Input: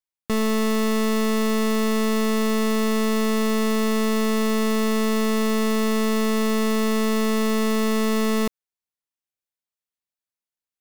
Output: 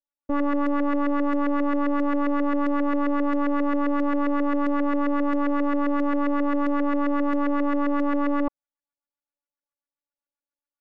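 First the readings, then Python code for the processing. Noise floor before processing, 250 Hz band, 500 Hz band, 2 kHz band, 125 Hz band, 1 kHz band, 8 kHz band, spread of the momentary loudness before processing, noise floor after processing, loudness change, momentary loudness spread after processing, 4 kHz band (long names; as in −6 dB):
below −85 dBFS, −1.0 dB, −4.5 dB, −4.0 dB, can't be measured, +1.0 dB, below −30 dB, 0 LU, below −85 dBFS, −2.0 dB, 0 LU, below −15 dB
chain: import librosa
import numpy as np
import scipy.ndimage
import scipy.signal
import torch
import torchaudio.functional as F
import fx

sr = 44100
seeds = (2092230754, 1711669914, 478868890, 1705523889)

y = fx.filter_lfo_lowpass(x, sr, shape='saw_up', hz=7.5, low_hz=450.0, high_hz=1700.0, q=2.4)
y = fx.robotise(y, sr, hz=286.0)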